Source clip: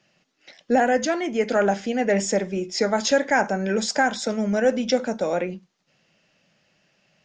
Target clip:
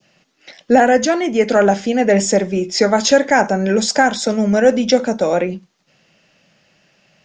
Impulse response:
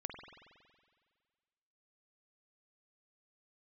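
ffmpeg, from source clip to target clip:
-af "adynamicequalizer=threshold=0.0178:dfrequency=1700:dqfactor=0.84:tfrequency=1700:tqfactor=0.84:attack=5:release=100:ratio=0.375:range=2:mode=cutabove:tftype=bell,volume=8dB"

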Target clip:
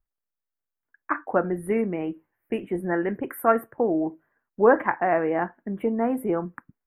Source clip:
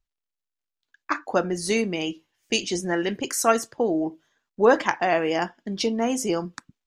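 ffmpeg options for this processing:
ffmpeg -i in.wav -af "asuperstop=centerf=5200:order=8:qfactor=0.53" out.wav

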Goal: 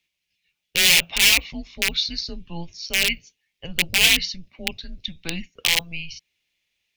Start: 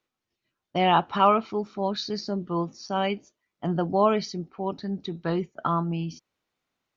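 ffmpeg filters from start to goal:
ffmpeg -i in.wav -af "aeval=exprs='(mod(7.08*val(0)+1,2)-1)/7.08':channel_layout=same,highshelf=frequency=1900:width_type=q:width=3:gain=11,afreqshift=-170,volume=-4dB" out.wav

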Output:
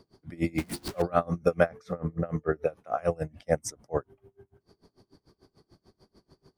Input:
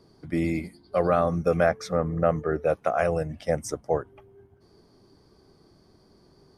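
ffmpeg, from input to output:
ffmpeg -i in.wav -filter_complex "[0:a]asettb=1/sr,asplit=3[link_01][link_02][link_03];[link_01]atrim=end=0.584[link_04];[link_02]atrim=start=0.58:end=1.02,asetpts=PTS-STARTPTS,afade=type=in:duration=0.004:curve=qsin,afade=type=out:start_time=0.436:duration=0.004:curve=qsin,aeval=exprs='val(0)+0.5*0.0376*sgn(val(0))':channel_layout=same[link_05];[link_03]atrim=start=1.016[link_06];[link_04][link_05]acrossfade=duration=0.004:curve1=hsin:curve2=qsin[link_07];[link_07][link_06]acrossfade=duration=0.004:curve1=qsin:curve2=hsin,aeval=exprs='val(0)*pow(10,-28*(0.5-0.5*cos(2*PI*6.8*n/s))/20)':channel_layout=same,volume=2.5dB" out.wav

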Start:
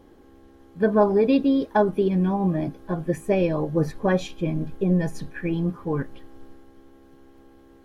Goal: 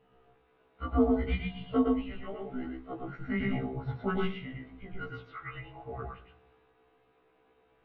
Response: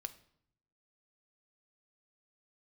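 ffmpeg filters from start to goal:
-filter_complex "[0:a]highpass=450,highpass=frequency=580:width_type=q:width=0.5412,highpass=frequency=580:width_type=q:width=1.307,lowpass=frequency=3600:width_type=q:width=0.5176,lowpass=frequency=3600:width_type=q:width=0.7071,lowpass=frequency=3600:width_type=q:width=1.932,afreqshift=-370,asplit=2[link_01][link_02];[1:a]atrim=start_sample=2205,lowshelf=frequency=240:gain=9,adelay=112[link_03];[link_02][link_03]afir=irnorm=-1:irlink=0,volume=0dB[link_04];[link_01][link_04]amix=inputs=2:normalize=0,afftfilt=real='re*1.73*eq(mod(b,3),0)':imag='im*1.73*eq(mod(b,3),0)':win_size=2048:overlap=0.75,volume=-2dB"

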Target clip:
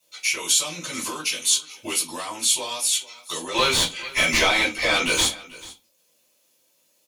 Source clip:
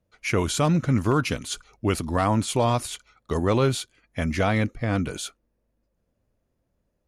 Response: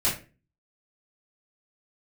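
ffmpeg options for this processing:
-filter_complex "[0:a]highpass=460,tiltshelf=frequency=750:gain=-3.5,acompressor=threshold=-41dB:ratio=4,asoftclip=type=tanh:threshold=-26dB,aexciter=amount=4.7:drive=5.3:freq=2300,asettb=1/sr,asplit=3[link_01][link_02][link_03];[link_01]atrim=end=3.544[link_04];[link_02]atrim=start=3.54:end=5.25,asetpts=PTS-STARTPTS,afade=type=in:duration=0.004:curve=qsin,afade=type=out:start_time=1.706:duration=0.004:curve=qsin,asplit=2[link_05][link_06];[link_06]highpass=frequency=720:poles=1,volume=27dB,asoftclip=type=tanh:threshold=-12.5dB[link_07];[link_05][link_07]amix=inputs=2:normalize=0,lowpass=frequency=2000:poles=1,volume=-6dB[link_08];[link_03]atrim=start=5.246[link_09];[link_04][link_08]acrossfade=duration=0.004:curve1=hsin:curve2=qsin[link_10];[link_10][link_09]acrossfade=duration=0.004:curve1=qsin:curve2=hsin,aecho=1:1:439:0.1[link_11];[1:a]atrim=start_sample=2205,asetrate=66150,aresample=44100[link_12];[link_11][link_12]afir=irnorm=-1:irlink=0"

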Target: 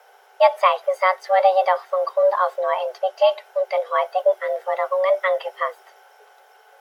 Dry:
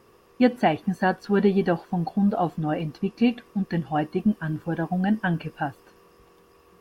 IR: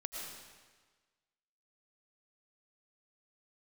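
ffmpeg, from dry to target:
-af "afreqshift=370,volume=4dB"

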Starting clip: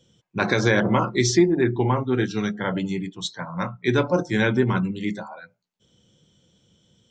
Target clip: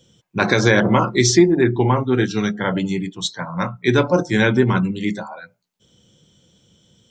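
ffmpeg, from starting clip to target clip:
ffmpeg -i in.wav -af "highshelf=frequency=7100:gain=5,volume=4.5dB" out.wav

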